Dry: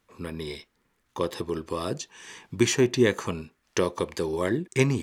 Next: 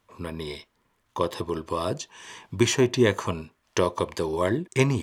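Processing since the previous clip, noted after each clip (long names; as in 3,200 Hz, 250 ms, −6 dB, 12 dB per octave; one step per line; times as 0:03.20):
thirty-one-band graphic EQ 100 Hz +7 dB, 630 Hz +6 dB, 1,000 Hz +7 dB, 3,150 Hz +3 dB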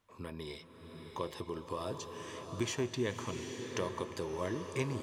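downward compressor 1.5 to 1, threshold −35 dBFS, peak gain reduction 7.5 dB
slow-attack reverb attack 800 ms, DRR 5 dB
level −7.5 dB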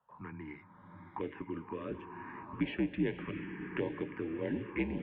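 phaser swept by the level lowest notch 390 Hz, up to 1,300 Hz, full sweep at −31.5 dBFS
single-sideband voice off tune −67 Hz 190–2,700 Hz
level +4 dB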